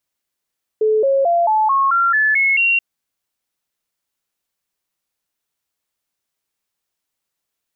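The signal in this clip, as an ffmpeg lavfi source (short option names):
-f lavfi -i "aevalsrc='0.251*clip(min(mod(t,0.22),0.22-mod(t,0.22))/0.005,0,1)*sin(2*PI*433*pow(2,floor(t/0.22)/3)*mod(t,0.22))':d=1.98:s=44100"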